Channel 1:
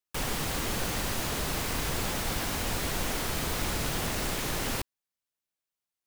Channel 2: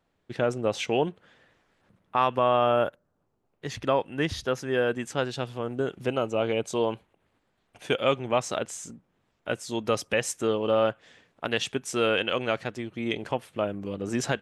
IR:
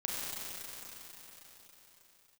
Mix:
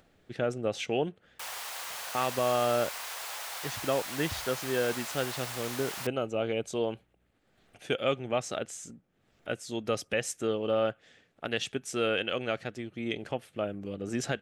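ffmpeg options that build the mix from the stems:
-filter_complex "[0:a]highpass=frequency=660:width=0.5412,highpass=frequency=660:width=1.3066,aeval=exprs='val(0)+0.000447*(sin(2*PI*60*n/s)+sin(2*PI*2*60*n/s)/2+sin(2*PI*3*60*n/s)/3+sin(2*PI*4*60*n/s)/4+sin(2*PI*5*60*n/s)/5)':channel_layout=same,adelay=1250,volume=-5dB[link_01];[1:a]equalizer=frequency=990:width_type=o:width=0.27:gain=-10.5,volume=-4dB[link_02];[link_01][link_02]amix=inputs=2:normalize=0,acompressor=mode=upward:threshold=-52dB:ratio=2.5"

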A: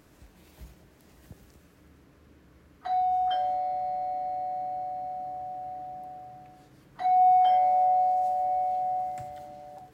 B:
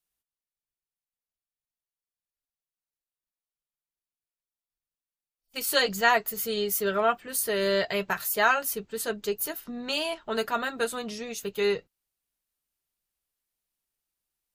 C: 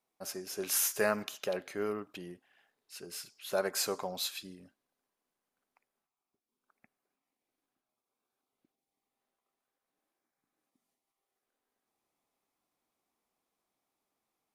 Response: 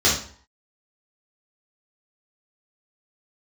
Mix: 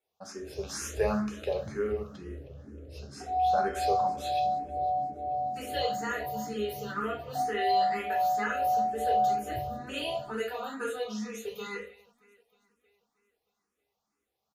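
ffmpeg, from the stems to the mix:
-filter_complex "[0:a]alimiter=level_in=1dB:limit=-24dB:level=0:latency=1,volume=-1dB,lowshelf=frequency=780:width_type=q:width=3:gain=12,adelay=350,volume=-12.5dB,asplit=2[link_01][link_02];[link_02]volume=-11dB[link_03];[1:a]aecho=1:1:4.1:0.85,acrossover=split=600|3100|7000[link_04][link_05][link_06][link_07];[link_04]acompressor=threshold=-37dB:ratio=4[link_08];[link_05]acompressor=threshold=-29dB:ratio=4[link_09];[link_06]acompressor=threshold=-56dB:ratio=4[link_10];[link_07]acompressor=threshold=-41dB:ratio=4[link_11];[link_08][link_09][link_10][link_11]amix=inputs=4:normalize=0,volume=-12.5dB,asplit=3[link_12][link_13][link_14];[link_13]volume=-7dB[link_15];[link_14]volume=-12.5dB[link_16];[2:a]aemphasis=mode=reproduction:type=50fm,volume=0dB,asplit=3[link_17][link_18][link_19];[link_18]volume=-18.5dB[link_20];[link_19]volume=-21dB[link_21];[3:a]atrim=start_sample=2205[link_22];[link_03][link_15][link_20]amix=inputs=3:normalize=0[link_23];[link_23][link_22]afir=irnorm=-1:irlink=0[link_24];[link_16][link_21]amix=inputs=2:normalize=0,aecho=0:1:314|628|942|1256|1570|1884|2198|2512|2826:1|0.59|0.348|0.205|0.121|0.0715|0.0422|0.0249|0.0147[link_25];[link_01][link_12][link_17][link_24][link_25]amix=inputs=5:normalize=0,asplit=2[link_26][link_27];[link_27]afreqshift=2.1[link_28];[link_26][link_28]amix=inputs=2:normalize=1"

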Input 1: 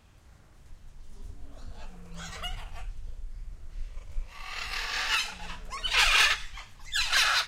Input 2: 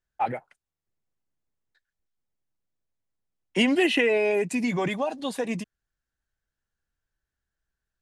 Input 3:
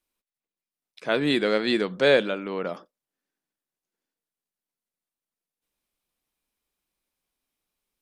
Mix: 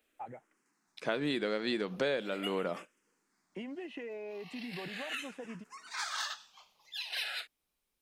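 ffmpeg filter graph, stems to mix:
ffmpeg -i stem1.wav -i stem2.wav -i stem3.wav -filter_complex "[0:a]highpass=frequency=250:width=0.5412,highpass=frequency=250:width=1.3066,asplit=2[link_01][link_02];[link_02]afreqshift=-0.4[link_03];[link_01][link_03]amix=inputs=2:normalize=1,volume=0dB[link_04];[1:a]lowpass=frequency=1400:poles=1,acompressor=threshold=-26dB:ratio=6,volume=-13.5dB[link_05];[2:a]volume=-1dB,asplit=2[link_06][link_07];[link_07]apad=whole_len=329658[link_08];[link_04][link_08]sidechaingate=range=-10dB:threshold=-44dB:ratio=16:detection=peak[link_09];[link_09][link_05][link_06]amix=inputs=3:normalize=0,acompressor=threshold=-29dB:ratio=8" out.wav

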